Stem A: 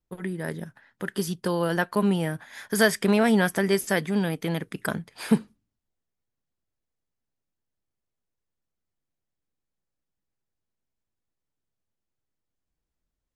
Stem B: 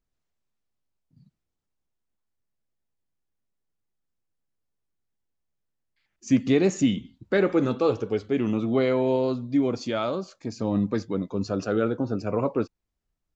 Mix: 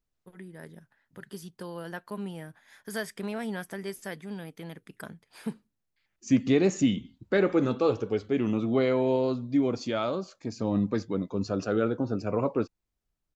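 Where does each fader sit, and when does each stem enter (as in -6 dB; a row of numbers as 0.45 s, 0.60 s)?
-13.5 dB, -2.0 dB; 0.15 s, 0.00 s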